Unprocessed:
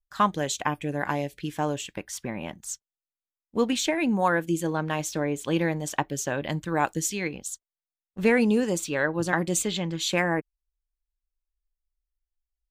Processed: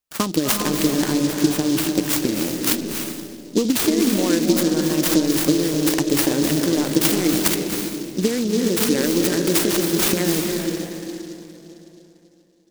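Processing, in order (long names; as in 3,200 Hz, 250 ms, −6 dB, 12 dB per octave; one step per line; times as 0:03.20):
in parallel at −0.5 dB: brickwall limiter −17 dBFS, peak gain reduction 9 dB
on the sum: drawn EQ curve 210 Hz 0 dB, 300 Hz +9 dB, 850 Hz −13 dB, 4,500 Hz +4 dB
downward compressor, threshold −19 dBFS, peak gain reduction 9 dB
Bessel high-pass filter 160 Hz
high-shelf EQ 9,900 Hz +6 dB
transient designer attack +7 dB, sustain +11 dB
on a send at −1.5 dB: convolution reverb RT60 3.3 s, pre-delay 217 ms
on the sum: short delay modulated by noise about 4,800 Hz, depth 0.091 ms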